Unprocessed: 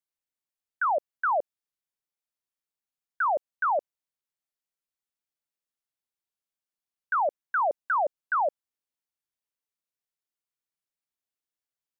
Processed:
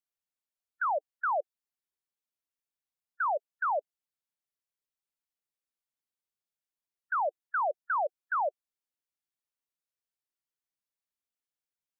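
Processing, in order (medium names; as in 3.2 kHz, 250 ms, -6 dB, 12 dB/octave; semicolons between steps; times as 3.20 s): spectral gate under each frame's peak -15 dB strong; trim -4 dB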